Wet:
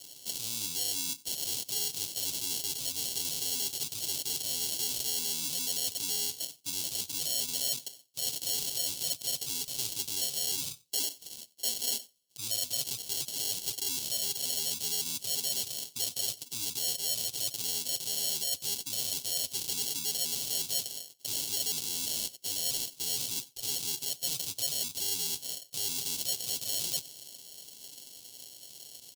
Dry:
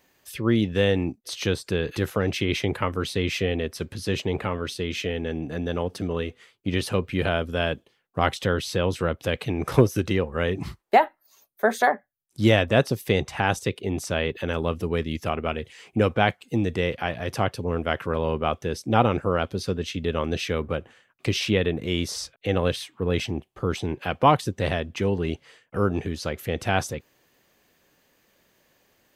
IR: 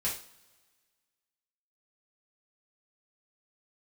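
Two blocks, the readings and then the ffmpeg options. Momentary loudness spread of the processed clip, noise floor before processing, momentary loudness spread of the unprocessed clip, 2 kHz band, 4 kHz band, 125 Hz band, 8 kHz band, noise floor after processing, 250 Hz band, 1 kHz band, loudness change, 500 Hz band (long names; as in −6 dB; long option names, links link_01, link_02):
6 LU, −68 dBFS, 9 LU, −19.5 dB, +1.0 dB, −26.0 dB, +10.5 dB, −56 dBFS, −24.5 dB, −26.0 dB, −5.5 dB, −25.0 dB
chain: -filter_complex "[0:a]areverse,acompressor=threshold=-32dB:ratio=16,areverse,aecho=1:1:7.4:0.85,acrusher=samples=36:mix=1:aa=0.000001,asoftclip=type=tanh:threshold=-33.5dB,alimiter=level_in=17.5dB:limit=-24dB:level=0:latency=1:release=86,volume=-17.5dB,lowshelf=frequency=78:gain=-9.5,aecho=1:1:91:0.0708,asplit=2[link_01][link_02];[1:a]atrim=start_sample=2205[link_03];[link_02][link_03]afir=irnorm=-1:irlink=0,volume=-28.5dB[link_04];[link_01][link_04]amix=inputs=2:normalize=0,aexciter=amount=12:drive=9.3:freq=2900,volume=-3dB"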